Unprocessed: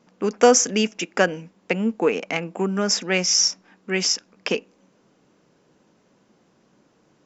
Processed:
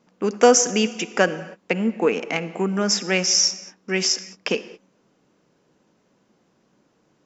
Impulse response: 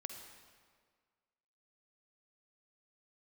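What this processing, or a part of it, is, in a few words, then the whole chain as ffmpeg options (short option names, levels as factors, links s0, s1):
keyed gated reverb: -filter_complex "[0:a]asplit=3[s0][s1][s2];[1:a]atrim=start_sample=2205[s3];[s1][s3]afir=irnorm=-1:irlink=0[s4];[s2]apad=whole_len=319987[s5];[s4][s5]sidechaingate=range=0.0224:threshold=0.00562:ratio=16:detection=peak,volume=0.75[s6];[s0][s6]amix=inputs=2:normalize=0,volume=0.708"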